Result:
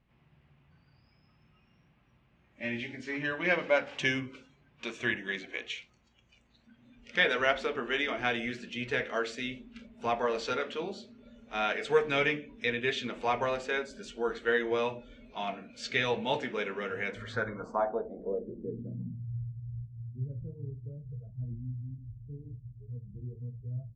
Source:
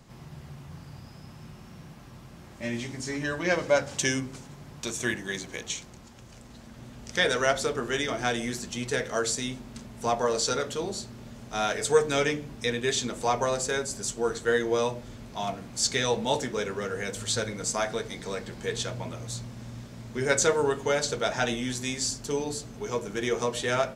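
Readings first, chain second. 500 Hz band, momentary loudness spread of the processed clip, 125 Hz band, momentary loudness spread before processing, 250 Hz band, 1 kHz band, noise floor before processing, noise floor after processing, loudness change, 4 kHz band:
-5.5 dB, 15 LU, -2.5 dB, 20 LU, -5.5 dB, -4.0 dB, -48 dBFS, -67 dBFS, -4.5 dB, -6.5 dB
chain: low-pass sweep 2.6 kHz -> 120 Hz, 16.99–19.44 s; hum 60 Hz, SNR 25 dB; spectral noise reduction 16 dB; trim -4.5 dB

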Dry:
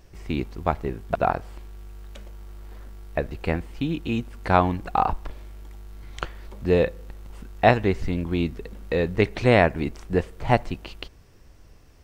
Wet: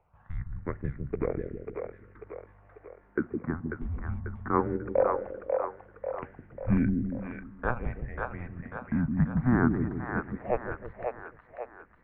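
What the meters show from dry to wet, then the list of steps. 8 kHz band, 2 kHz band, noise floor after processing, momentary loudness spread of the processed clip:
no reading, -8.5 dB, -59 dBFS, 17 LU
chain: phase shifter stages 6, 0.19 Hz, lowest notch 180–1300 Hz; mistuned SSB -250 Hz 210–2100 Hz; two-band feedback delay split 430 Hz, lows 160 ms, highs 542 ms, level -3.5 dB; trim -2.5 dB

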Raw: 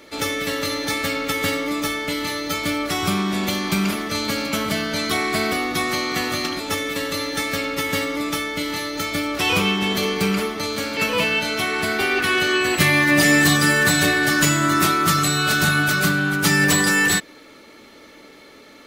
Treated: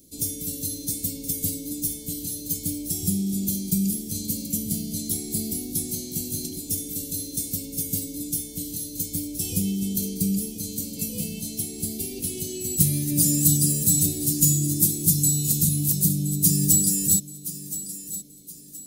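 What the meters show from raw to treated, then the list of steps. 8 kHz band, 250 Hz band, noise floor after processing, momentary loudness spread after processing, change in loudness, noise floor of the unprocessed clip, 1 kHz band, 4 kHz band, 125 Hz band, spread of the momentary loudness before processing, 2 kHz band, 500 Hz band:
+3.5 dB, -4.5 dB, -40 dBFS, 12 LU, -4.0 dB, -46 dBFS, under -35 dB, -13.5 dB, -0.5 dB, 9 LU, -35.0 dB, -16.0 dB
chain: Chebyshev band-stop 180–8800 Hz, order 2; treble shelf 5.8 kHz +9 dB; on a send: thinning echo 1022 ms, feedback 37%, high-pass 240 Hz, level -13 dB

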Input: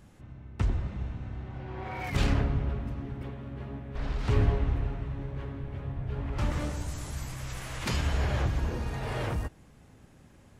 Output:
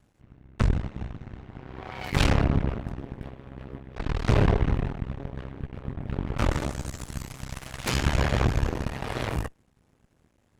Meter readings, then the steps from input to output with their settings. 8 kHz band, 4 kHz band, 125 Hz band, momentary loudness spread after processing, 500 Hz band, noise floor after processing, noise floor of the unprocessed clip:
+4.5 dB, +5.5 dB, +3.0 dB, 18 LU, +5.0 dB, -66 dBFS, -56 dBFS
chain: half-wave rectifier; Chebyshev shaper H 3 -24 dB, 5 -14 dB, 6 -7 dB, 7 -14 dB, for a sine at -13 dBFS

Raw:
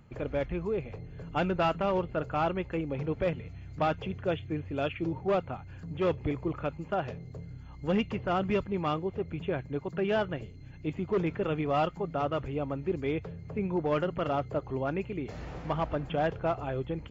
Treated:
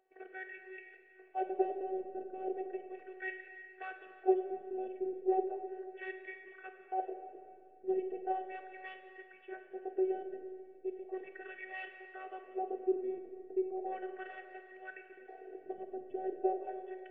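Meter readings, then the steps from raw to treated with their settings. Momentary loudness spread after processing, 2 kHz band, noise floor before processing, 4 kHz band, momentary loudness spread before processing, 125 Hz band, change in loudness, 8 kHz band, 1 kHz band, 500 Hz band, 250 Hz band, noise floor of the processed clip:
16 LU, -7.0 dB, -46 dBFS, under -20 dB, 10 LU, under -40 dB, -7.5 dB, no reading, -7.0 dB, -6.5 dB, -9.5 dB, -60 dBFS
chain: wah-wah 0.36 Hz 290–2000 Hz, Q 3.8; vowel filter e; robot voice 377 Hz; Schroeder reverb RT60 2.3 s, combs from 31 ms, DRR 5.5 dB; trim +15.5 dB

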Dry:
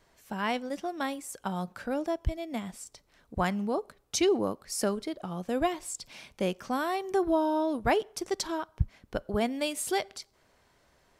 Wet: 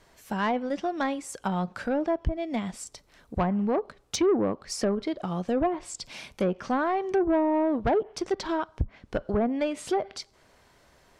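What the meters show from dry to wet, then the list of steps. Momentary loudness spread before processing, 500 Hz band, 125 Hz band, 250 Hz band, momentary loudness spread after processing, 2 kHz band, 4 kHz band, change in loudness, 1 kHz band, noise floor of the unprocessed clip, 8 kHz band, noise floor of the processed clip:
12 LU, +3.5 dB, +3.0 dB, +4.5 dB, 11 LU, +0.5 dB, -1.5 dB, +3.0 dB, +2.5 dB, -67 dBFS, -2.5 dB, -61 dBFS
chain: low-pass that closes with the level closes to 830 Hz, closed at -23 dBFS; saturation -23.5 dBFS, distortion -14 dB; trim +6 dB

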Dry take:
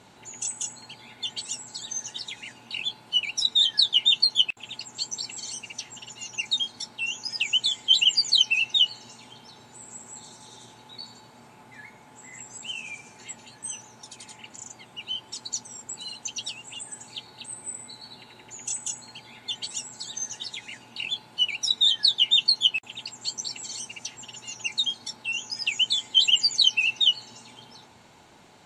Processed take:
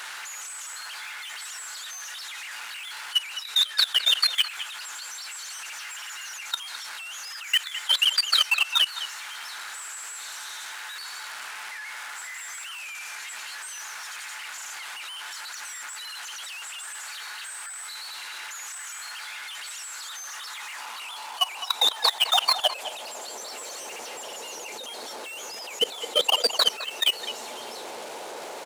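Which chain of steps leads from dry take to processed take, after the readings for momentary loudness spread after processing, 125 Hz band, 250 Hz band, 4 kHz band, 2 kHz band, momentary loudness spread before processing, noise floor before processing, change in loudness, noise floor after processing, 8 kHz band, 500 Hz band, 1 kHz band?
15 LU, under -15 dB, no reading, -2.5 dB, +0.5 dB, 23 LU, -52 dBFS, -4.0 dB, -38 dBFS, -1.0 dB, +15.0 dB, +13.5 dB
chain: one-bit delta coder 64 kbps, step -21 dBFS; in parallel at -8.5 dB: decimation with a swept rate 16×, swing 100% 0.62 Hz; on the sum: high-pass sweep 1.5 kHz -> 480 Hz, 19.81–23.79 s; level held to a coarse grid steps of 19 dB; speakerphone echo 210 ms, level -10 dB

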